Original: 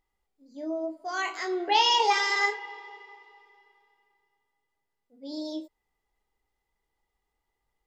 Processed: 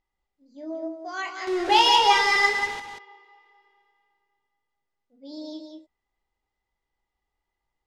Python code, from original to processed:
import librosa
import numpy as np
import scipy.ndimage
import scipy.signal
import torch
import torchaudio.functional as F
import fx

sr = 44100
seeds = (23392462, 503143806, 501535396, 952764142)

p1 = fx.zero_step(x, sr, step_db=-28.0, at=(1.47, 2.8))
p2 = scipy.signal.sosfilt(scipy.signal.butter(2, 6200.0, 'lowpass', fs=sr, output='sos'), p1)
p3 = fx.notch(p2, sr, hz=440.0, q=12.0)
p4 = 10.0 ** (-22.5 / 20.0) * np.tanh(p3 / 10.0 ** (-22.5 / 20.0))
p5 = p3 + (p4 * 10.0 ** (-12.0 / 20.0))
p6 = p5 + 10.0 ** (-6.0 / 20.0) * np.pad(p5, (int(186 * sr / 1000.0), 0))[:len(p5)]
p7 = fx.upward_expand(p6, sr, threshold_db=-30.0, expansion=1.5)
y = p7 * 10.0 ** (2.5 / 20.0)